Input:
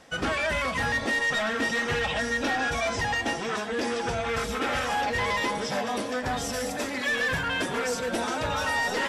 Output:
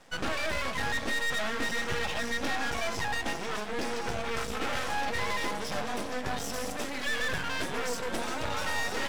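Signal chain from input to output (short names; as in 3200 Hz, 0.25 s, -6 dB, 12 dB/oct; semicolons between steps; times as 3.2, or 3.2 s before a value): half-wave rectifier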